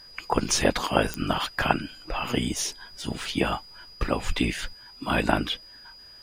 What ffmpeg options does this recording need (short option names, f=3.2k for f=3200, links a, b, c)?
-af "adeclick=t=4,bandreject=f=4.9k:w=30"